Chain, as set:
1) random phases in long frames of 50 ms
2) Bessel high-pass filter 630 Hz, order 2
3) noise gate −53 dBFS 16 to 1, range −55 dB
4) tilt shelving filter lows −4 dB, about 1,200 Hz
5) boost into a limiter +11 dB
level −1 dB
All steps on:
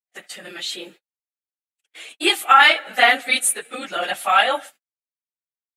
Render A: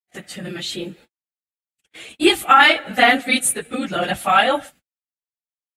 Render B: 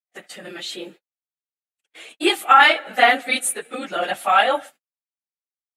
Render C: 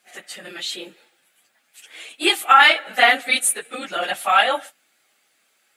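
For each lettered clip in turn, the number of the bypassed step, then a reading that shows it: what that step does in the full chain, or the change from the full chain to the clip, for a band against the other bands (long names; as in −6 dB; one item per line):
2, 250 Hz band +10.5 dB
4, 250 Hz band +5.0 dB
3, change in momentary loudness spread +3 LU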